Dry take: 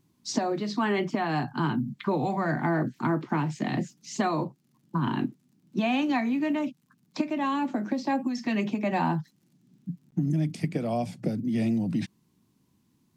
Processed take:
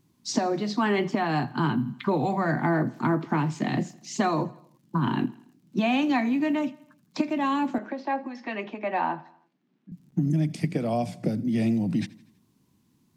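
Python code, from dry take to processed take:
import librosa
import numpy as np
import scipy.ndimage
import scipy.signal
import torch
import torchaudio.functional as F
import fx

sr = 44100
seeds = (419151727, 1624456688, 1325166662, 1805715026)

y = fx.bandpass_edges(x, sr, low_hz=440.0, high_hz=2500.0, at=(7.78, 9.92))
y = fx.echo_feedback(y, sr, ms=81, feedback_pct=53, wet_db=-21.0)
y = y * librosa.db_to_amplitude(2.0)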